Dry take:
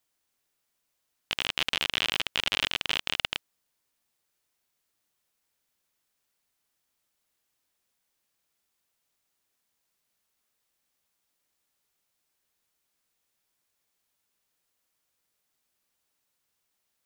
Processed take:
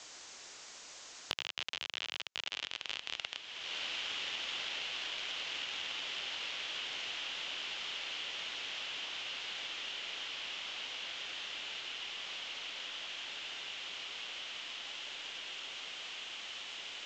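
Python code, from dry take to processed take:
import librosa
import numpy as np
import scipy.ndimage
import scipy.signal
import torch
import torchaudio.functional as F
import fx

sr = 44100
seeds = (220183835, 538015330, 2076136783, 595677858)

y = scipy.signal.sosfilt(scipy.signal.butter(12, 7400.0, 'lowpass', fs=sr, output='sos'), x)
y = fx.bass_treble(y, sr, bass_db=-11, treble_db=4)
y = fx.echo_diffused(y, sr, ms=1532, feedback_pct=65, wet_db=-10.5)
y = fx.band_squash(y, sr, depth_pct=100)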